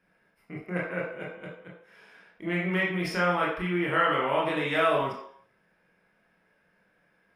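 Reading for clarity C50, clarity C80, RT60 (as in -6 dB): 3.5 dB, 7.5 dB, 0.65 s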